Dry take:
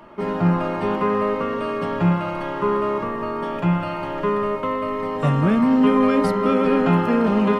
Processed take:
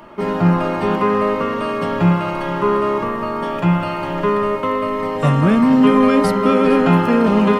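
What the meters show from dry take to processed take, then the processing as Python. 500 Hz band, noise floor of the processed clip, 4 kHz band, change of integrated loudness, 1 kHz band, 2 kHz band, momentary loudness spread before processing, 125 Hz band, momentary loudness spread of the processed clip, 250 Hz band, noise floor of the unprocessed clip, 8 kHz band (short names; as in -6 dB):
+4.0 dB, -23 dBFS, +6.0 dB, +4.0 dB, +4.5 dB, +5.0 dB, 8 LU, +4.0 dB, 8 LU, +4.0 dB, -28 dBFS, n/a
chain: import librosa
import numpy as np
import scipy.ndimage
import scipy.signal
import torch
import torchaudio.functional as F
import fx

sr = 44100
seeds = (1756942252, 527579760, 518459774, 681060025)

y = fx.high_shelf(x, sr, hz=4300.0, db=5.5)
y = y + 10.0 ** (-16.5 / 20.0) * np.pad(y, (int(459 * sr / 1000.0), 0))[:len(y)]
y = F.gain(torch.from_numpy(y), 4.0).numpy()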